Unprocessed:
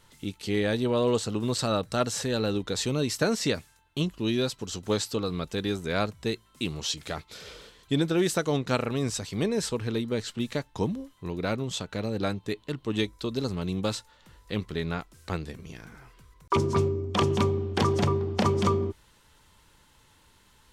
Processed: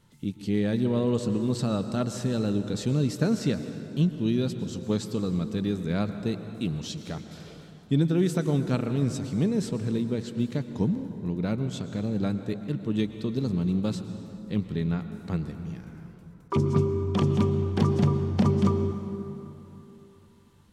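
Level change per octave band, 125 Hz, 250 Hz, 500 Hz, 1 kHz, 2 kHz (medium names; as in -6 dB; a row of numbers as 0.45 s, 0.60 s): +4.5 dB, +4.0 dB, -2.5 dB, -6.0 dB, -7.0 dB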